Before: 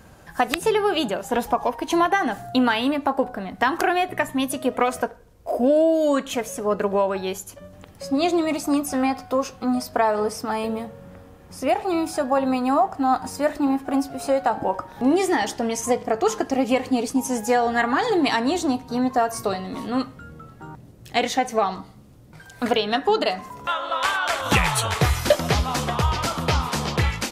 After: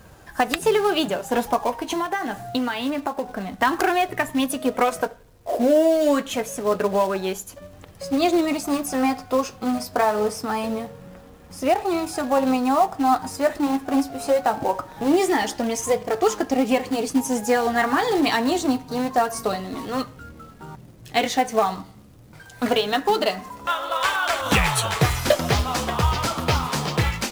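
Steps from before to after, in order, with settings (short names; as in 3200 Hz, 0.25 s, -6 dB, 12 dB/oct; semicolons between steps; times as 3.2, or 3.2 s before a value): in parallel at -3.5 dB: companded quantiser 4-bit; 1.71–3.29 on the sum: compressor 6:1, threshold -18 dBFS, peak gain reduction 8 dB; flange 0.25 Hz, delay 1.6 ms, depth 9.3 ms, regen -52%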